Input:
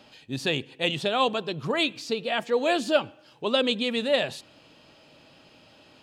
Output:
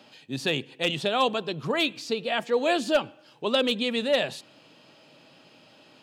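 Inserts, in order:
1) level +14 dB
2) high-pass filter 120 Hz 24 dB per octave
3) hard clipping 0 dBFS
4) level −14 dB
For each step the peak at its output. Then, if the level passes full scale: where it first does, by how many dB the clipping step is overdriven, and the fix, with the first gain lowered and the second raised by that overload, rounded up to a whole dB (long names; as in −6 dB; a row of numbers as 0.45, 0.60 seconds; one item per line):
+5.0, +5.5, 0.0, −14.0 dBFS
step 1, 5.5 dB
step 1 +8 dB, step 4 −8 dB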